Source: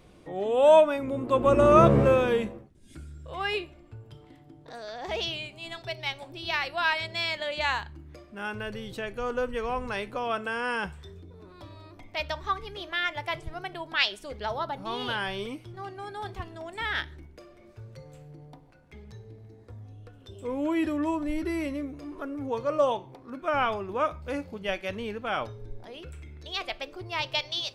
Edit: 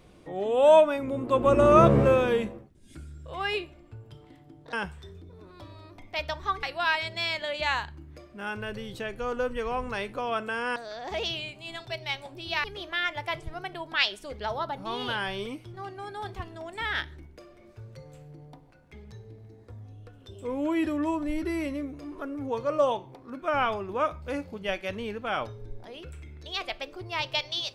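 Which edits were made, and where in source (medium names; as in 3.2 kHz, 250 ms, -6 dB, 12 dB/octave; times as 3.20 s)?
4.73–6.61 s: swap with 10.74–12.64 s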